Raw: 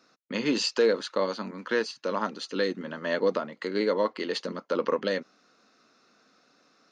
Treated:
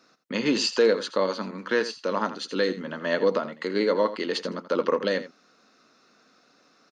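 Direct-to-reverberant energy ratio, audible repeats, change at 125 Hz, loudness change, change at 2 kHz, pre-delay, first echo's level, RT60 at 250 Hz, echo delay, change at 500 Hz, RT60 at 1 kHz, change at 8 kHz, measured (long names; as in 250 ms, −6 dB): no reverb audible, 1, +2.5 dB, +2.5 dB, +3.0 dB, no reverb audible, −13.5 dB, no reverb audible, 83 ms, +2.5 dB, no reverb audible, +2.5 dB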